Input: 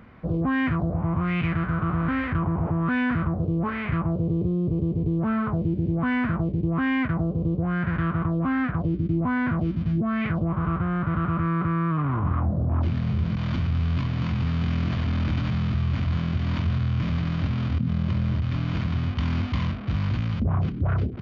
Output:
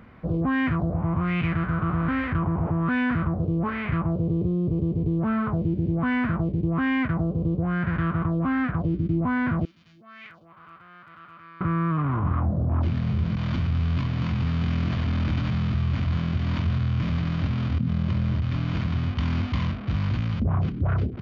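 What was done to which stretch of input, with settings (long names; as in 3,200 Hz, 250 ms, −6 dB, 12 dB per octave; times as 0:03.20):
0:09.65–0:11.61: first difference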